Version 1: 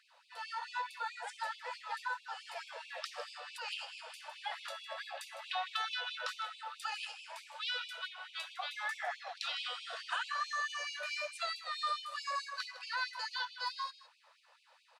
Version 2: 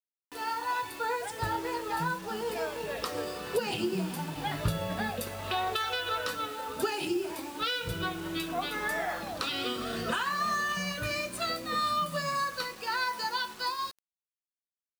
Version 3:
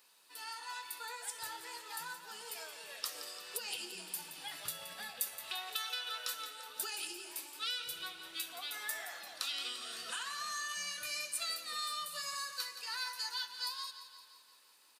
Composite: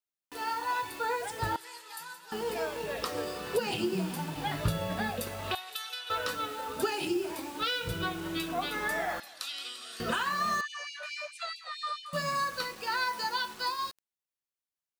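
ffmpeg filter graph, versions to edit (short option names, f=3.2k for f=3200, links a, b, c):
-filter_complex "[2:a]asplit=3[a][b][c];[1:a]asplit=5[d][e][f][g][h];[d]atrim=end=1.562[i];[a]atrim=start=1.558:end=2.322[j];[e]atrim=start=2.318:end=5.552[k];[b]atrim=start=5.548:end=6.102[l];[f]atrim=start=6.098:end=9.202[m];[c]atrim=start=9.198:end=10.002[n];[g]atrim=start=9.998:end=10.612[o];[0:a]atrim=start=10.608:end=12.132[p];[h]atrim=start=12.128[q];[i][j]acrossfade=d=0.004:c1=hsin:c2=hsin[r];[r][k]acrossfade=d=0.004:c1=hsin:c2=hsin[s];[s][l]acrossfade=d=0.004:c1=hsin:c2=hsin[t];[t][m]acrossfade=d=0.004:c1=hsin:c2=hsin[u];[u][n]acrossfade=d=0.004:c1=hsin:c2=hsin[v];[v][o]acrossfade=d=0.004:c1=hsin:c2=hsin[w];[w][p]acrossfade=d=0.004:c1=hsin:c2=hsin[x];[x][q]acrossfade=d=0.004:c1=hsin:c2=hsin"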